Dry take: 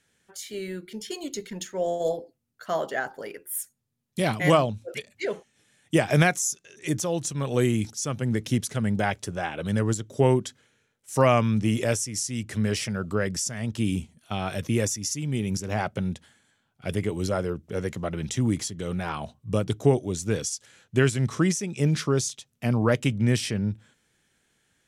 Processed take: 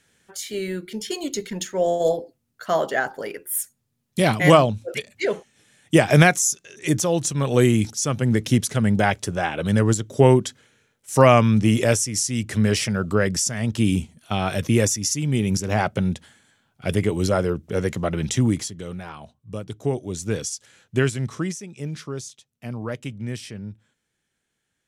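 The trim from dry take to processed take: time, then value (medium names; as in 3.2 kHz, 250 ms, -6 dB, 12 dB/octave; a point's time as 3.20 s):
18.37 s +6 dB
19.14 s -7 dB
19.69 s -7 dB
20.22 s +1 dB
20.99 s +1 dB
21.79 s -8 dB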